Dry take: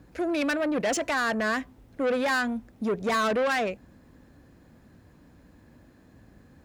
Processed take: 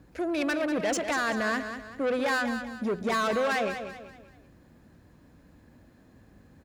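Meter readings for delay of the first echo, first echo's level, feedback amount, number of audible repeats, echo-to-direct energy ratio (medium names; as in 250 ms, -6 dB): 192 ms, -9.0 dB, 39%, 4, -8.5 dB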